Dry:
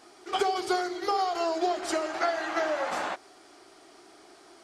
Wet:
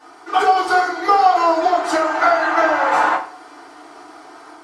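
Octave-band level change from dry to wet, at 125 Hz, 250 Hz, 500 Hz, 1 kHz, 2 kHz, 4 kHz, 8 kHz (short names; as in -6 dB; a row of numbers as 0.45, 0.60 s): n/a, +8.5 dB, +10.0 dB, +15.0 dB, +14.5 dB, +6.0 dB, +5.0 dB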